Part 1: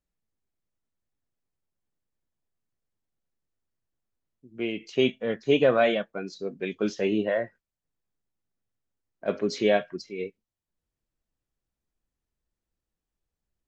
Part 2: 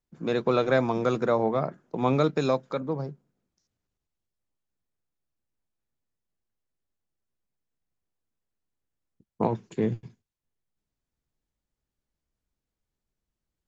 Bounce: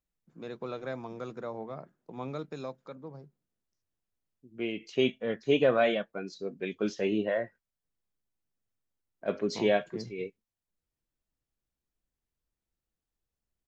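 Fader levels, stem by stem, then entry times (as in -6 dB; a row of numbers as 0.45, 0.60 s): -3.5, -14.5 dB; 0.00, 0.15 s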